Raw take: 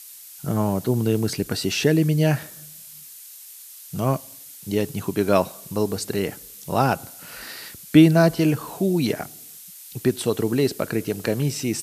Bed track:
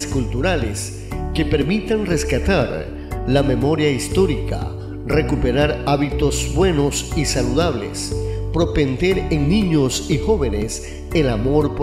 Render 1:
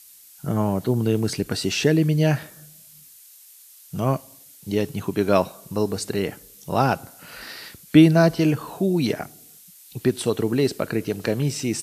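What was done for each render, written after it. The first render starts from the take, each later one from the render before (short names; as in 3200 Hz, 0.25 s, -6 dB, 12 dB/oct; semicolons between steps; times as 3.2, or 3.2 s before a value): noise print and reduce 6 dB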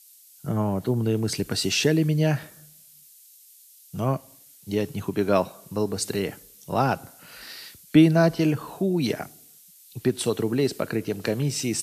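compressor 1.5:1, threshold -23 dBFS, peak gain reduction 5.5 dB; three-band expander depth 40%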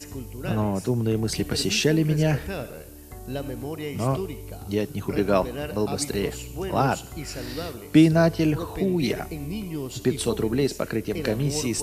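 add bed track -15.5 dB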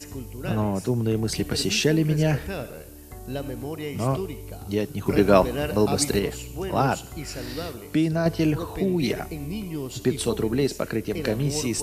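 5.06–6.19 gain +4.5 dB; 7.76–8.26 compressor 1.5:1, threshold -29 dBFS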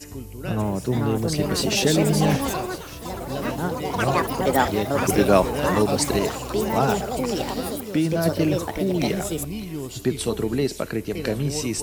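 echoes that change speed 0.587 s, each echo +5 st, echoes 3; thin delay 0.576 s, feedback 54%, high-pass 1800 Hz, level -15 dB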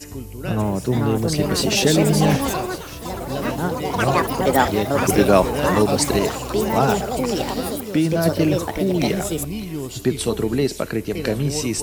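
gain +3 dB; limiter -2 dBFS, peak gain reduction 1.5 dB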